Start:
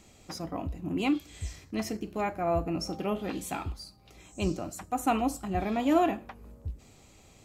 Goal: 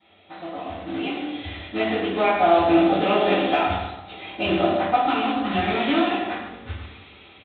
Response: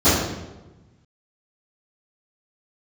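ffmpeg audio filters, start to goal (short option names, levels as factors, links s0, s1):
-filter_complex "[0:a]bandreject=f=60:t=h:w=6,bandreject=f=120:t=h:w=6,bandreject=f=180:t=h:w=6,bandreject=f=240:t=h:w=6,bandreject=f=300:t=h:w=6,bandreject=f=360:t=h:w=6,bandreject=f=420:t=h:w=6,bandreject=f=480:t=h:w=6,bandreject=f=540:t=h:w=6,asplit=2[s0][s1];[s1]adelay=108,lowpass=f=1900:p=1,volume=0.282,asplit=2[s2][s3];[s3]adelay=108,lowpass=f=1900:p=1,volume=0.3,asplit=2[s4][s5];[s5]adelay=108,lowpass=f=1900:p=1,volume=0.3[s6];[s0][s2][s4][s6]amix=inputs=4:normalize=0,acrusher=bits=3:mode=log:mix=0:aa=0.000001,aderivative,aresample=8000,aresample=44100,acompressor=threshold=0.00282:ratio=6[s7];[1:a]atrim=start_sample=2205,asetrate=48510,aresample=44100[s8];[s7][s8]afir=irnorm=-1:irlink=0,dynaudnorm=f=640:g=5:m=4.73,asetnsamples=n=441:p=0,asendcmd='5.06 equalizer g -6',equalizer=f=660:t=o:w=0.77:g=4.5,volume=0.75"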